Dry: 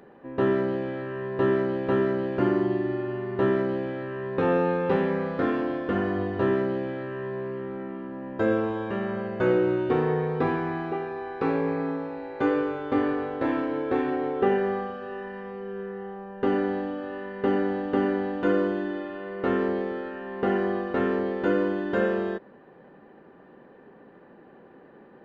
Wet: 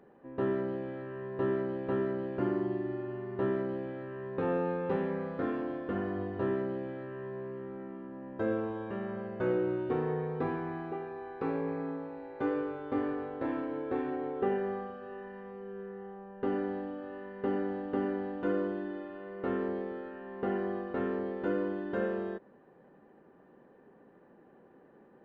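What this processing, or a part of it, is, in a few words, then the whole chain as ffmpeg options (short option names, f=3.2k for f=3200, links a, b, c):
behind a face mask: -af "highshelf=f=2.2k:g=-7.5,volume=-7.5dB"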